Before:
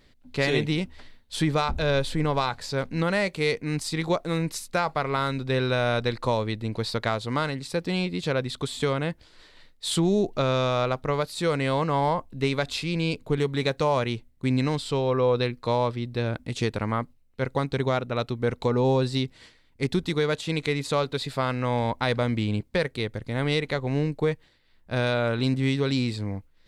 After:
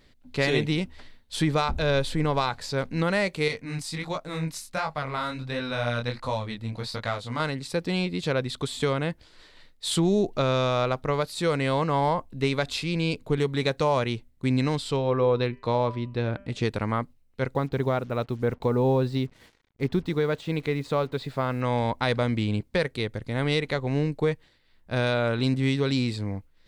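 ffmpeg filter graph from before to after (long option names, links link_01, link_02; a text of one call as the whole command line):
ffmpeg -i in.wav -filter_complex "[0:a]asettb=1/sr,asplit=3[link_01][link_02][link_03];[link_01]atrim=end=3.484[link_04];[link_02]atrim=start=3.48:end=7.4,asetpts=PTS-STARTPTS,afade=type=in:duration=0.004:curve=qsin,afade=type=out:start_time=3.916:duration=0.004:curve=qsin,equalizer=frequency=380:width=3.3:gain=-10.5,flanger=delay=19:depth=7:speed=1.4[link_05];[link_03]atrim=start=7.396[link_06];[link_04][link_05]acrossfade=duration=0.004:curve1=hsin:curve2=qsin[link_07];[link_07][link_06]acrossfade=duration=0.004:curve1=qsin:curve2=hsin,asettb=1/sr,asplit=3[link_08][link_09][link_10];[link_08]atrim=end=14.964[link_11];[link_09]atrim=start=14.96:end=16.65,asetpts=PTS-STARTPTS,afade=type=in:duration=0.004:curve=qsin,afade=type=out:start_time=1.686:duration=0.004:curve=qsin,aemphasis=mode=reproduction:type=50kf,bandreject=frequency=197.4:width_type=h:width=4,bandreject=frequency=394.8:width_type=h:width=4,bandreject=frequency=592.2:width_type=h:width=4,bandreject=frequency=789.6:width_type=h:width=4,bandreject=frequency=987:width_type=h:width=4,bandreject=frequency=1184.4:width_type=h:width=4,bandreject=frequency=1381.8:width_type=h:width=4,bandreject=frequency=1579.2:width_type=h:width=4,bandreject=frequency=1776.6:width_type=h:width=4,bandreject=frequency=1974:width_type=h:width=4,bandreject=frequency=2171.4:width_type=h:width=4,bandreject=frequency=2368.8:width_type=h:width=4,bandreject=frequency=2566.2:width_type=h:width=4,bandreject=frequency=2763.6:width_type=h:width=4,bandreject=frequency=2961:width_type=h:width=4,bandreject=frequency=3158.4:width_type=h:width=4[link_12];[link_10]atrim=start=16.646[link_13];[link_11][link_12]acrossfade=duration=0.004:curve1=hsin:curve2=qsin[link_14];[link_14][link_13]acrossfade=duration=0.004:curve1=qsin:curve2=hsin,asettb=1/sr,asplit=3[link_15][link_16][link_17];[link_15]atrim=end=17.544[link_18];[link_16]atrim=start=17.54:end=21.61,asetpts=PTS-STARTPTS,afade=type=in:duration=0.004:curve=qsin,afade=type=out:start_time=4.066:duration=0.004:curve=qsin,lowpass=frequency=1600:poles=1,acrusher=bits=8:mix=0:aa=0.5[link_19];[link_17]atrim=start=21.606[link_20];[link_18][link_19]acrossfade=duration=0.004:curve1=hsin:curve2=qsin[link_21];[link_21][link_20]acrossfade=duration=0.004:curve1=qsin:curve2=hsin" out.wav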